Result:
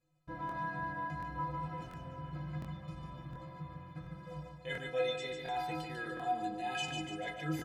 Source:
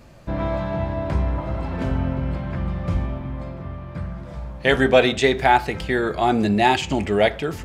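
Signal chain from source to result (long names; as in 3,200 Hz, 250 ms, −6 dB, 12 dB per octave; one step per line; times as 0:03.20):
noise gate with hold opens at −26 dBFS
reversed playback
downward compressor 6 to 1, threshold −26 dBFS, peak gain reduction 16 dB
reversed playback
stiff-string resonator 150 Hz, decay 0.59 s, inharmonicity 0.03
repeating echo 147 ms, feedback 45%, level −5 dB
regular buffer underruns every 0.71 s, samples 1,024, repeat, from 0:00.47
level +5 dB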